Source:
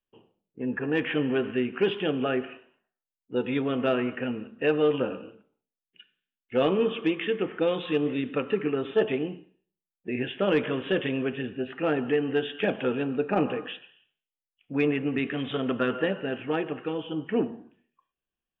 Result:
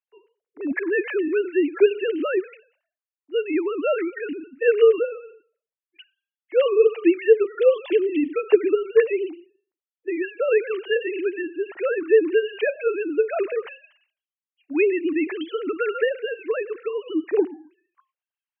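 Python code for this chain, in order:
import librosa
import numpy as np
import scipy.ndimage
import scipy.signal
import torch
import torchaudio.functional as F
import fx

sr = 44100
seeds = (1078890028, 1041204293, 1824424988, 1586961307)

y = fx.sine_speech(x, sr)
y = F.gain(torch.from_numpy(y), 5.5).numpy()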